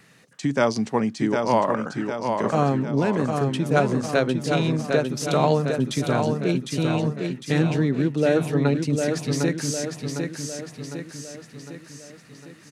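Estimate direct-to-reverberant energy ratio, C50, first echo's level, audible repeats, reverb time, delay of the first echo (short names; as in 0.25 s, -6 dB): none, none, -5.0 dB, 6, none, 0.755 s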